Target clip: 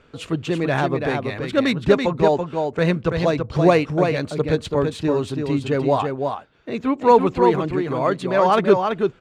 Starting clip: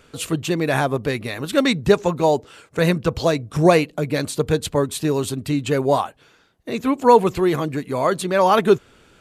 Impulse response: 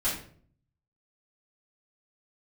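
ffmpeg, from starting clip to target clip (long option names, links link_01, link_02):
-af "aecho=1:1:333:0.562,adynamicsmooth=sensitivity=0.5:basefreq=3900,volume=-1dB"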